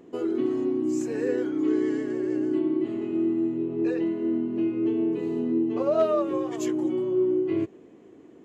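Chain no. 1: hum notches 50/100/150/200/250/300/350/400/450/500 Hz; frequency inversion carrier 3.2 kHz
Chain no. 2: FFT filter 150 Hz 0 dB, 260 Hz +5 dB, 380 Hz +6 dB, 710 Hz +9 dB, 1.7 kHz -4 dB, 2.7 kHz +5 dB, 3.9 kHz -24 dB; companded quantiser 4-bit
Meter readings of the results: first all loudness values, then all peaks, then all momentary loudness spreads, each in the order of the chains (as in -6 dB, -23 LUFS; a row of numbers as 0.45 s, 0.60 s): -23.0 LUFS, -19.5 LUFS; -12.0 dBFS, -6.0 dBFS; 4 LU, 5 LU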